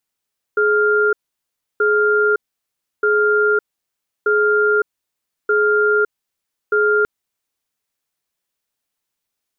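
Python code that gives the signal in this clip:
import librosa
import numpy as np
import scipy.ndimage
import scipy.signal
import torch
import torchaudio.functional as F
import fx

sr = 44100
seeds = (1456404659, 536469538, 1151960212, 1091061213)

y = fx.cadence(sr, length_s=6.48, low_hz=421.0, high_hz=1400.0, on_s=0.56, off_s=0.67, level_db=-15.0)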